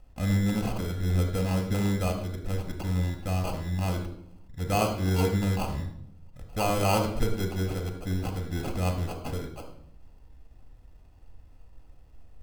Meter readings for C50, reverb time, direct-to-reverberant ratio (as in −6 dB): 8.0 dB, 0.70 s, 4.0 dB